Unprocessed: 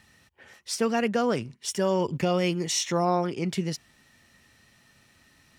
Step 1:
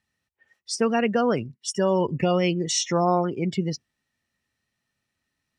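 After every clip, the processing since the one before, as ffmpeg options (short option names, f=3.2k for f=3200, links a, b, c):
-af "afftdn=nr=23:nf=-36,volume=3dB"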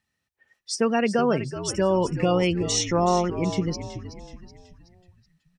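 -filter_complex "[0:a]asplit=6[a][b][c][d][e][f];[b]adelay=375,afreqshift=-69,volume=-11.5dB[g];[c]adelay=750,afreqshift=-138,volume=-18.2dB[h];[d]adelay=1125,afreqshift=-207,volume=-25dB[i];[e]adelay=1500,afreqshift=-276,volume=-31.7dB[j];[f]adelay=1875,afreqshift=-345,volume=-38.5dB[k];[a][g][h][i][j][k]amix=inputs=6:normalize=0"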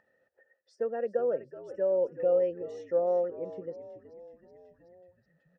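-filter_complex "[0:a]asplit=3[a][b][c];[a]bandpass=f=530:t=q:w=8,volume=0dB[d];[b]bandpass=f=1.84k:t=q:w=8,volume=-6dB[e];[c]bandpass=f=2.48k:t=q:w=8,volume=-9dB[f];[d][e][f]amix=inputs=3:normalize=0,acompressor=mode=upward:threshold=-45dB:ratio=2.5,highshelf=f=1.7k:t=q:w=3:g=-13"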